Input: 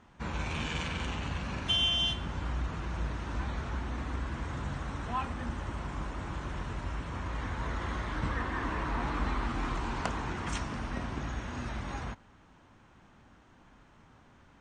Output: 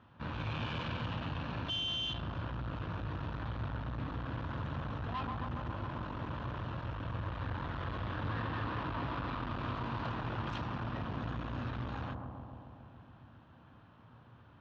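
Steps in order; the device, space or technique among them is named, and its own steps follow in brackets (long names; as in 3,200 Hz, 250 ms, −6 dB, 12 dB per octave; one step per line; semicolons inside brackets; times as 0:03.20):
analogue delay pedal into a guitar amplifier (bucket-brigade delay 136 ms, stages 1,024, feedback 74%, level −5 dB; tube saturation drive 35 dB, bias 0.65; loudspeaker in its box 84–3,800 Hz, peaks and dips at 110 Hz +8 dB, 200 Hz −4 dB, 390 Hz −6 dB, 780 Hz −4 dB, 2,100 Hz −9 dB)
level +3 dB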